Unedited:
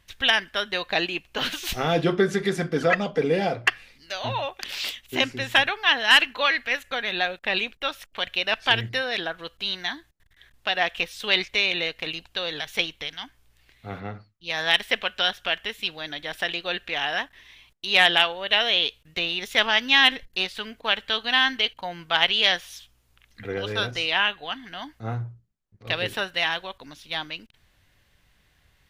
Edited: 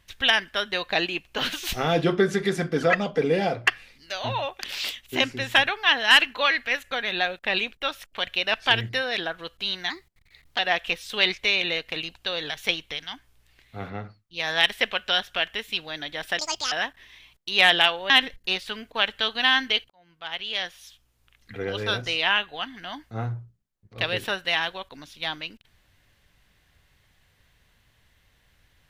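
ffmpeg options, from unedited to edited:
-filter_complex "[0:a]asplit=7[a][b][c][d][e][f][g];[a]atrim=end=9.904[h];[b]atrim=start=9.9:end=10.69,asetpts=PTS-STARTPTS,asetrate=50715,aresample=44100[i];[c]atrim=start=10.686:end=16.494[j];[d]atrim=start=16.49:end=17.08,asetpts=PTS-STARTPTS,asetrate=78498,aresample=44100,atrim=end_sample=14617,asetpts=PTS-STARTPTS[k];[e]atrim=start=17.076:end=18.462[l];[f]atrim=start=19.988:end=21.79,asetpts=PTS-STARTPTS,afade=t=out:st=1.798:d=0.004:c=hsin[m];[g]atrim=start=21.79,asetpts=PTS-STARTPTS,afade=t=in:d=1.83[n];[h][i]acrossfade=d=0.004:c1=hsin:c2=hsin[o];[o][j]acrossfade=d=0.004:c1=hsin:c2=hsin[p];[p][k]acrossfade=d=0.004:c1=hsin:c2=hsin[q];[q][l]acrossfade=d=0.004:c1=hsin:c2=hsin[r];[m][n]concat=n=2:v=0:a=1[s];[r][s]acrossfade=d=0.004:c1=hsin:c2=hsin"

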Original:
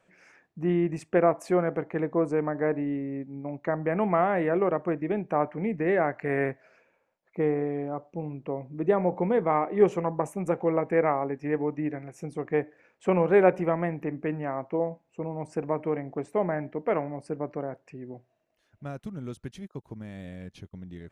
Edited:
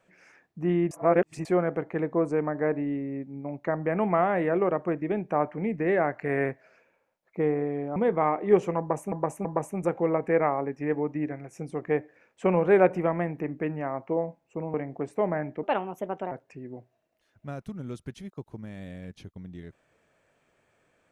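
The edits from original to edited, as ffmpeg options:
-filter_complex "[0:a]asplit=9[a][b][c][d][e][f][g][h][i];[a]atrim=end=0.912[j];[b]atrim=start=0.908:end=1.452,asetpts=PTS-STARTPTS,areverse[k];[c]atrim=start=1.448:end=7.962[l];[d]atrim=start=9.248:end=10.412[m];[e]atrim=start=10.078:end=10.412[n];[f]atrim=start=10.078:end=15.372[o];[g]atrim=start=15.908:end=16.804[p];[h]atrim=start=16.8:end=17.69,asetpts=PTS-STARTPTS,asetrate=57330,aresample=44100[q];[i]atrim=start=17.686[r];[j][k]acrossfade=d=0.004:c1=hsin:c2=hsin[s];[s][l]acrossfade=d=0.004:c1=hsin:c2=hsin[t];[t][m]acrossfade=d=0.004:c1=hsin:c2=hsin[u];[u][n]acrossfade=d=0.004:c1=hsin:c2=hsin[v];[v][o]acrossfade=d=0.004:c1=hsin:c2=hsin[w];[w][p]acrossfade=d=0.004:c1=hsin:c2=hsin[x];[x][q]acrossfade=d=0.004:c1=hsin:c2=hsin[y];[y][r]acrossfade=d=0.004:c1=hsin:c2=hsin"

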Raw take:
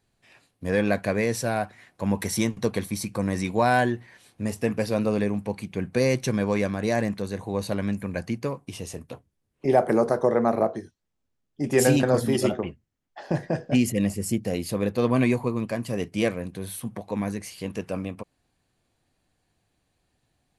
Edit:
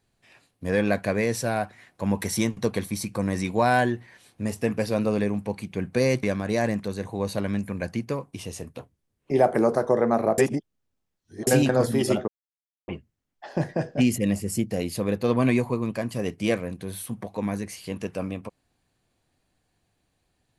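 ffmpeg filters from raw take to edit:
-filter_complex "[0:a]asplit=5[a][b][c][d][e];[a]atrim=end=6.232[f];[b]atrim=start=6.568:end=10.722[g];[c]atrim=start=10.718:end=11.812,asetpts=PTS-STARTPTS,areverse[h];[d]atrim=start=11.808:end=12.62,asetpts=PTS-STARTPTS,afade=t=out:st=0.808:d=0.004:c=hsin,apad=pad_dur=0.6[i];[e]atrim=start=12.62,asetpts=PTS-STARTPTS,afade=t=in:d=0.004:c=hsin[j];[f][g]acrossfade=d=0.004:c1=hsin:c2=hsin[k];[k][h]acrossfade=d=0.004:c1=hsin:c2=hsin[l];[i][j]concat=n=2:v=0:a=1[m];[l][m]acrossfade=d=0.004:c1=hsin:c2=hsin"

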